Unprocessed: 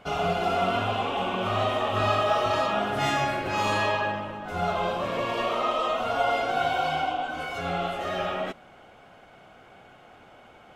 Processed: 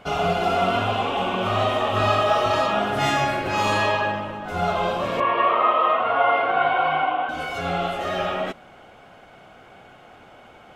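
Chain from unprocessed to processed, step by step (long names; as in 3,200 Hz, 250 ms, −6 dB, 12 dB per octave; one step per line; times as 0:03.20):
0:05.20–0:07.29: loudspeaker in its box 160–2,900 Hz, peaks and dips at 230 Hz −7 dB, 1,100 Hz +9 dB, 1,900 Hz +5 dB
level +4 dB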